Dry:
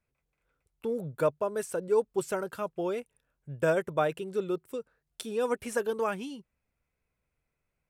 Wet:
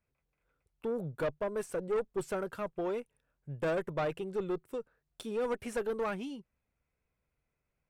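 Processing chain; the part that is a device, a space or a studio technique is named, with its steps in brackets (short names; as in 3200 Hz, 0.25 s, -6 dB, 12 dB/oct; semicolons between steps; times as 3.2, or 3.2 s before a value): tube preamp driven hard (tube stage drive 27 dB, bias 0.3; high shelf 4100 Hz -8 dB)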